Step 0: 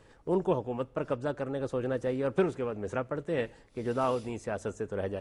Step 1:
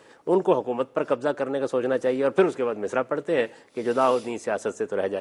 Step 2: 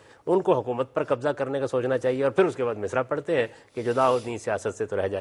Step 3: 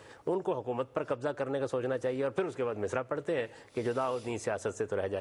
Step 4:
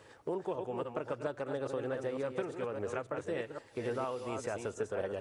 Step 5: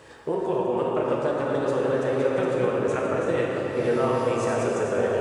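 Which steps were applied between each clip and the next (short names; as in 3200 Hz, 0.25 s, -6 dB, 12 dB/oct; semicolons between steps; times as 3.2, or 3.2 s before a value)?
HPF 270 Hz 12 dB/oct; gain +8.5 dB
resonant low shelf 140 Hz +10 dB, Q 1.5
compressor 5:1, threshold -29 dBFS, peak gain reduction 13 dB
reverse delay 0.279 s, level -5.5 dB; gain -5 dB
reverb RT60 4.6 s, pre-delay 6 ms, DRR -3.5 dB; gain +7.5 dB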